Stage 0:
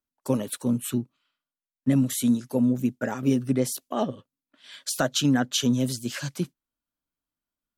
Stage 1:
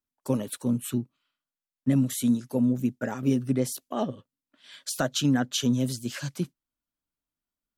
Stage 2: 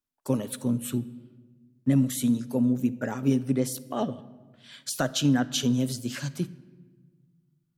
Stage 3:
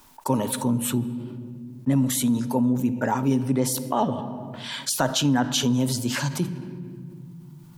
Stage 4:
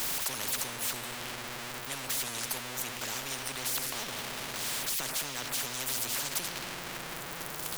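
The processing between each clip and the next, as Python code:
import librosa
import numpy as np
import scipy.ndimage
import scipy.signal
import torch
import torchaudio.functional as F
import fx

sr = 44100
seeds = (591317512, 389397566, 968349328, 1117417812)

y1 = fx.low_shelf(x, sr, hz=210.0, db=3.5)
y1 = y1 * librosa.db_to_amplitude(-3.0)
y2 = fx.room_shoebox(y1, sr, seeds[0], volume_m3=1300.0, walls='mixed', distance_m=0.3)
y3 = fx.peak_eq(y2, sr, hz=920.0, db=14.5, octaves=0.35)
y3 = fx.env_flatten(y3, sr, amount_pct=50)
y4 = y3 + 0.5 * 10.0 ** (-35.0 / 20.0) * np.sign(y3)
y4 = fx.spectral_comp(y4, sr, ratio=10.0)
y4 = y4 * librosa.db_to_amplitude(-8.5)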